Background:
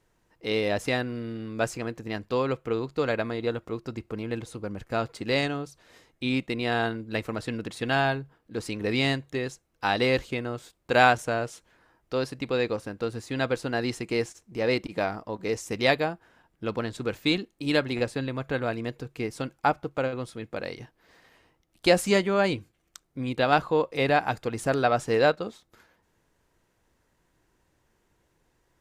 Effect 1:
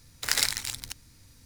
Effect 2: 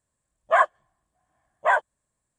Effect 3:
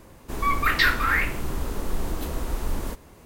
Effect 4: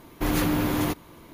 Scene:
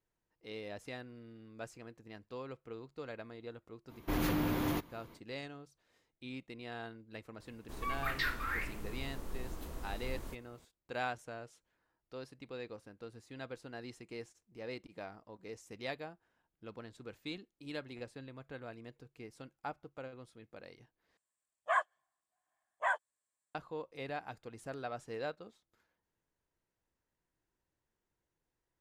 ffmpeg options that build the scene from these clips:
ffmpeg -i bed.wav -i cue0.wav -i cue1.wav -i cue2.wav -i cue3.wav -filter_complex "[0:a]volume=-18.5dB[link_01];[4:a]equalizer=frequency=9000:width=1:gain=-5.5[link_02];[2:a]highpass=frequency=1200:poles=1[link_03];[link_01]asplit=2[link_04][link_05];[link_04]atrim=end=21.174[link_06];[link_03]atrim=end=2.38,asetpts=PTS-STARTPTS,volume=-9dB[link_07];[link_05]atrim=start=23.546[link_08];[link_02]atrim=end=1.33,asetpts=PTS-STARTPTS,volume=-8.5dB,afade=type=in:duration=0.05,afade=type=out:start_time=1.28:duration=0.05,adelay=3870[link_09];[3:a]atrim=end=3.25,asetpts=PTS-STARTPTS,volume=-15dB,afade=type=in:duration=0.004:curve=hsin,afade=type=out:start_time=3.246:duration=0.004:curve=hsin,adelay=7400[link_10];[link_06][link_07]acrossfade=duration=0.004:curve1=hsin:curve2=hsin[link_11];[link_11][link_08]acrossfade=duration=0.004:curve1=hsin:curve2=hsin[link_12];[link_12][link_09][link_10]amix=inputs=3:normalize=0" out.wav

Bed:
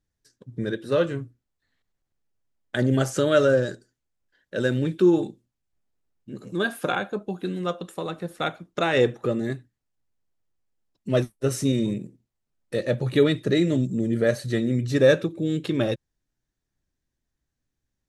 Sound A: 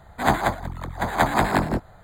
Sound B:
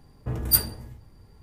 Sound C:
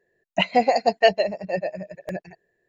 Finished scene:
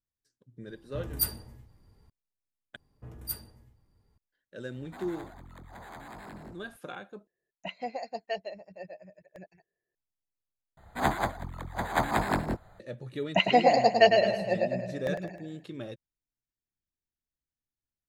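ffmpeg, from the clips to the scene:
ffmpeg -i bed.wav -i cue0.wav -i cue1.wav -i cue2.wav -filter_complex "[2:a]asplit=2[link_01][link_02];[1:a]asplit=2[link_03][link_04];[3:a]asplit=2[link_05][link_06];[0:a]volume=-16dB[link_07];[link_03]acompressor=threshold=-33dB:ratio=5:attack=1.8:release=22:knee=6:detection=peak[link_08];[link_06]aecho=1:1:104|208|312|416|520|624:0.501|0.236|0.111|0.052|0.0245|0.0115[link_09];[link_07]asplit=4[link_10][link_11][link_12][link_13];[link_10]atrim=end=2.764[link_14];[link_02]atrim=end=1.42,asetpts=PTS-STARTPTS,volume=-16dB[link_15];[link_11]atrim=start=4.176:end=7.274[link_16];[link_05]atrim=end=2.68,asetpts=PTS-STARTPTS,volume=-17.5dB[link_17];[link_12]atrim=start=9.946:end=10.774[link_18];[link_04]atrim=end=2.03,asetpts=PTS-STARTPTS,volume=-7dB[link_19];[link_13]atrim=start=12.796[link_20];[link_01]atrim=end=1.42,asetpts=PTS-STARTPTS,volume=-8.5dB,afade=type=in:duration=0.004:curve=hsin,afade=type=out:start_time=1.416:duration=0.004:curve=hsin,adelay=680[link_21];[link_08]atrim=end=2.03,asetpts=PTS-STARTPTS,volume=-12dB,afade=type=in:duration=0.004:curve=hsin,afade=type=out:start_time=2.026:duration=0.004:curve=hsin,adelay=4740[link_22];[link_09]atrim=end=2.68,asetpts=PTS-STARTPTS,volume=-3dB,afade=type=in:duration=0.004:curve=hsin,afade=type=out:start_time=2.676:duration=0.004:curve=hsin,adelay=12980[link_23];[link_14][link_15]acrossfade=duration=0.004:curve1=hsin:curve2=hsin[link_24];[link_24][link_16]acrossfade=duration=0.004:curve1=hsin:curve2=hsin[link_25];[link_25][link_17]acrossfade=duration=0.004:curve1=hsin:curve2=hsin[link_26];[link_26][link_18]acrossfade=duration=0.004:curve1=hsin:curve2=hsin[link_27];[link_27][link_19]acrossfade=duration=0.004:curve1=hsin:curve2=hsin[link_28];[link_28][link_20]acrossfade=duration=0.004:curve1=hsin:curve2=hsin[link_29];[link_29][link_21][link_22][link_23]amix=inputs=4:normalize=0" out.wav

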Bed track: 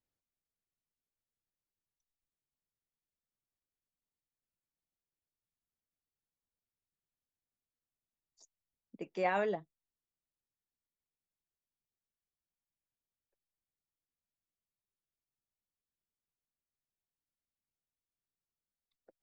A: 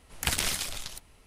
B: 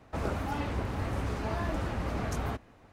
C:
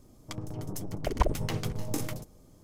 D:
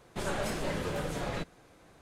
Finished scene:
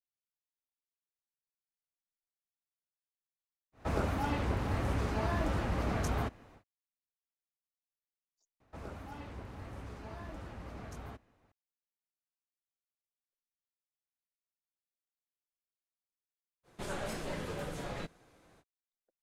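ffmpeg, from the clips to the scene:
ffmpeg -i bed.wav -i cue0.wav -i cue1.wav -i cue2.wav -i cue3.wav -filter_complex "[2:a]asplit=2[link_01][link_02];[0:a]volume=-17dB,asplit=2[link_03][link_04];[link_03]atrim=end=8.604[link_05];[link_02]atrim=end=2.92,asetpts=PTS-STARTPTS,volume=-13dB[link_06];[link_04]atrim=start=11.516[link_07];[link_01]atrim=end=2.92,asetpts=PTS-STARTPTS,afade=type=in:duration=0.1,afade=type=out:start_time=2.82:duration=0.1,adelay=3720[link_08];[4:a]atrim=end=2.01,asetpts=PTS-STARTPTS,volume=-5.5dB,afade=type=in:duration=0.05,afade=type=out:start_time=1.96:duration=0.05,adelay=16630[link_09];[link_05][link_06]acrossfade=duration=0.004:curve1=hsin:curve2=hsin[link_10];[link_10][link_07]acrossfade=duration=0.004:curve1=hsin:curve2=hsin[link_11];[link_11][link_08][link_09]amix=inputs=3:normalize=0" out.wav

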